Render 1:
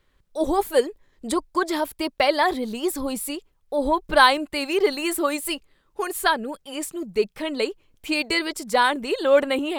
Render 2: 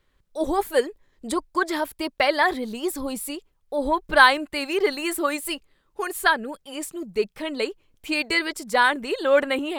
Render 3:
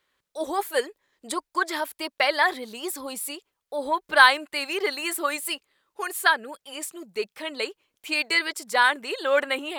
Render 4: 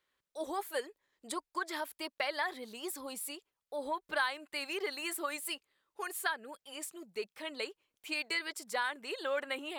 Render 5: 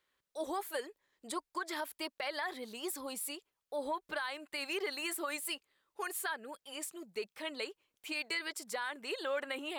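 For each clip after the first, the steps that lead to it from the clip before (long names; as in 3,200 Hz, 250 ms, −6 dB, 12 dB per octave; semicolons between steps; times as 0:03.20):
dynamic equaliser 1,700 Hz, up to +6 dB, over −35 dBFS, Q 1.6; level −2 dB
high-pass filter 820 Hz 6 dB per octave; level +1 dB
downward compressor 2.5 to 1, threshold −24 dBFS, peak gain reduction 10.5 dB; level −8.5 dB
brickwall limiter −28.5 dBFS, peak gain reduction 10 dB; level +1 dB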